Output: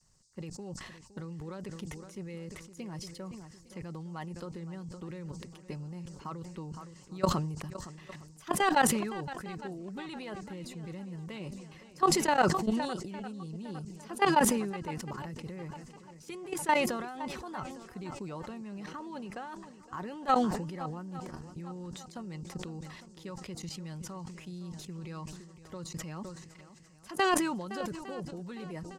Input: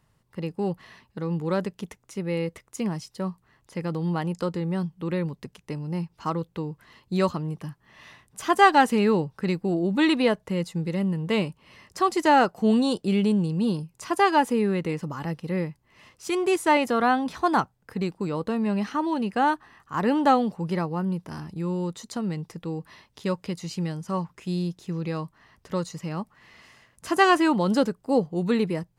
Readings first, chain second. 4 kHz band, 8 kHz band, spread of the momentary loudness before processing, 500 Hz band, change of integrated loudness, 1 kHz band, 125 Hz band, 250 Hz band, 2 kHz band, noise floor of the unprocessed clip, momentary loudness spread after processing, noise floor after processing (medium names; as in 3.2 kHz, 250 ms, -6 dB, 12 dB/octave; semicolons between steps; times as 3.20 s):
-6.5 dB, +3.5 dB, 14 LU, -10.5 dB, -9.0 dB, -8.5 dB, -10.0 dB, -11.0 dB, -8.0 dB, -67 dBFS, 18 LU, -55 dBFS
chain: comb 5.4 ms, depth 37%; level held to a coarse grid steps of 17 dB; bass shelf 89 Hz +9 dB; on a send: shuffle delay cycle 857 ms, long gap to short 1.5:1, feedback 34%, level -15 dB; on the sum: band noise 4.5–8.5 kHz -67 dBFS; harmonic-percussive split harmonic -6 dB; decay stretcher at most 48 dB/s; trim -3.5 dB